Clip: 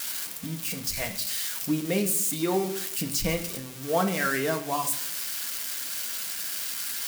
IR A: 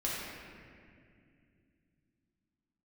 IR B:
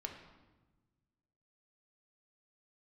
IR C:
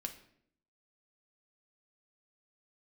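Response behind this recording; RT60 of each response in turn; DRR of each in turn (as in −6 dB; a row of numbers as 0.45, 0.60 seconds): C; 2.3, 1.2, 0.65 seconds; −7.0, 2.0, 4.0 decibels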